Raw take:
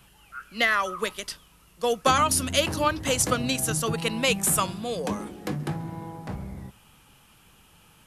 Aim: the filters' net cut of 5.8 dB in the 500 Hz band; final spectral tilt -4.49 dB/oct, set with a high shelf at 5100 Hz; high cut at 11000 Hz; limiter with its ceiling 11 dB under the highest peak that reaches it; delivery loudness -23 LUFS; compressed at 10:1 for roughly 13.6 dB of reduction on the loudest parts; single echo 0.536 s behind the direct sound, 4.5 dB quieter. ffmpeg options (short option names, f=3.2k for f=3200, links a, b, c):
-af "lowpass=11k,equalizer=f=500:t=o:g=-6.5,highshelf=f=5.1k:g=-8,acompressor=threshold=-33dB:ratio=10,alimiter=level_in=8dB:limit=-24dB:level=0:latency=1,volume=-8dB,aecho=1:1:536:0.596,volume=17.5dB"